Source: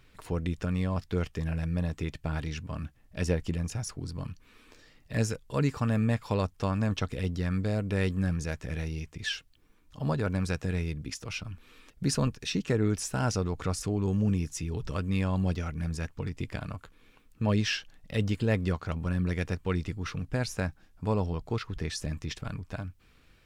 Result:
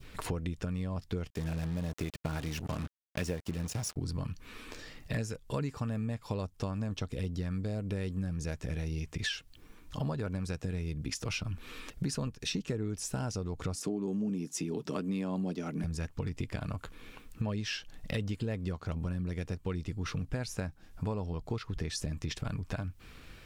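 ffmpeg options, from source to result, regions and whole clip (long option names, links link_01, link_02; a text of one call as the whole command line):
ffmpeg -i in.wav -filter_complex "[0:a]asettb=1/sr,asplit=3[link_01][link_02][link_03];[link_01]atrim=end=1.304[link_04];[link_02]atrim=start=1.3:end=3.96,asetpts=PTS-STARTPTS,afade=type=in:duration=0.004:curve=qsin,afade=type=out:start_time=2.656:duration=0.004:curve=qsin,highpass=frequency=110:poles=1,acrusher=bits=6:mix=0:aa=0.5,agate=range=-33dB:threshold=-51dB:ratio=3:release=100:detection=peak[link_05];[link_03]atrim=start=3.956[link_06];[link_04][link_05]acrossfade=duration=0.004:curve1=hsin:curve2=qsin[link_07];[link_07][link_06]acrossfade=duration=0.004:curve1=qsin:curve2=hsin,asettb=1/sr,asplit=3[link_08][link_09][link_10];[link_08]atrim=end=13.754[link_11];[link_09]atrim=start=13.75:end=15.84,asetpts=PTS-STARTPTS,afade=type=in:duration=0.004:curve=qsin,afade=type=out:start_time=2.086:duration=0.004:curve=qsin,highpass=frequency=210:width=0.5412,highpass=frequency=210:width=1.3066,lowshelf=frequency=480:gain=9,bandreject=frequency=520:width=11[link_12];[link_10]atrim=start=15.836[link_13];[link_11][link_12]acrossfade=duration=0.004:curve1=hsin:curve2=qsin[link_14];[link_14][link_13]acrossfade=duration=0.004:curve1=qsin:curve2=hsin,acontrast=52,adynamicequalizer=threshold=0.00708:dfrequency=1700:dqfactor=0.74:tfrequency=1700:tqfactor=0.74:attack=5:release=100:ratio=0.375:range=3:mode=cutabove:tftype=bell,acompressor=threshold=-36dB:ratio=6,volume=3.5dB" out.wav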